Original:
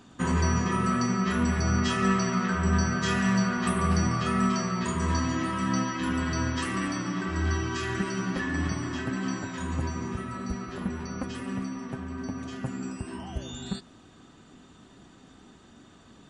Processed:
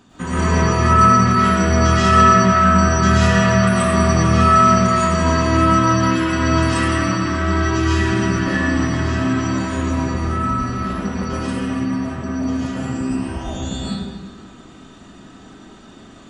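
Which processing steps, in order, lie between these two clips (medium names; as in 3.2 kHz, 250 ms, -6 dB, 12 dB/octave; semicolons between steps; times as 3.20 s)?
peaking EQ 69 Hz +3.5 dB 0.42 oct; reverberation RT60 1.6 s, pre-delay 80 ms, DRR -10 dB; trim +1 dB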